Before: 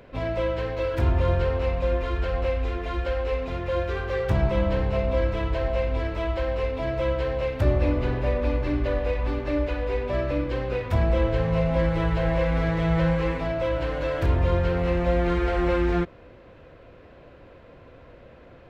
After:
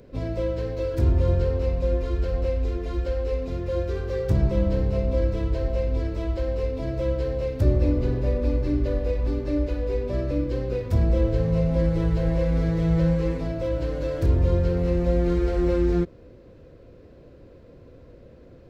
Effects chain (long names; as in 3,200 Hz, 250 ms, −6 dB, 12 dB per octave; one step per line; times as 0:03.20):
flat-topped bell 1,500 Hz −11.5 dB 2.7 octaves
level +2 dB